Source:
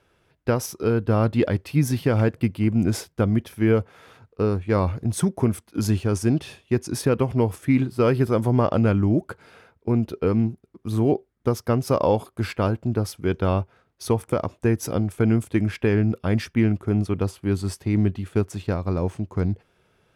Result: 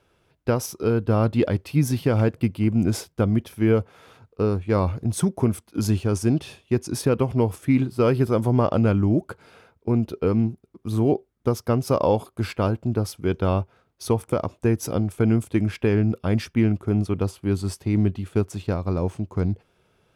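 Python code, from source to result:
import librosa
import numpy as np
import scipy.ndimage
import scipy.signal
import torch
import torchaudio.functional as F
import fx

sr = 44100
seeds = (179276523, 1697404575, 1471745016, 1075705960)

y = fx.peak_eq(x, sr, hz=1800.0, db=-4.0, octaves=0.51)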